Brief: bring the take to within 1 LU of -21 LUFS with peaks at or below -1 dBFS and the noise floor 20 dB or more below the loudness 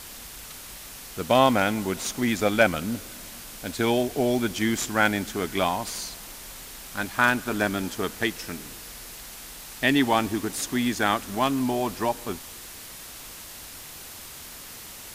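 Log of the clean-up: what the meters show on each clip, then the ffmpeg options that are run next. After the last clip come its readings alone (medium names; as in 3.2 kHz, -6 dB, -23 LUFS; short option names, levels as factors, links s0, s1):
noise floor -42 dBFS; noise floor target -45 dBFS; loudness -25.0 LUFS; peak level -5.0 dBFS; loudness target -21.0 LUFS
-> -af "afftdn=nr=6:nf=-42"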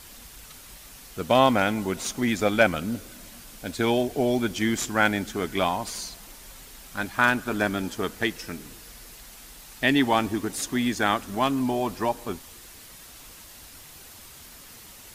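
noise floor -47 dBFS; loudness -25.0 LUFS; peak level -5.5 dBFS; loudness target -21.0 LUFS
-> -af "volume=1.58"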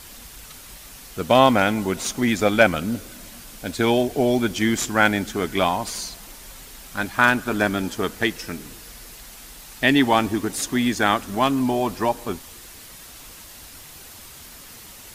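loudness -21.0 LUFS; peak level -1.5 dBFS; noise floor -43 dBFS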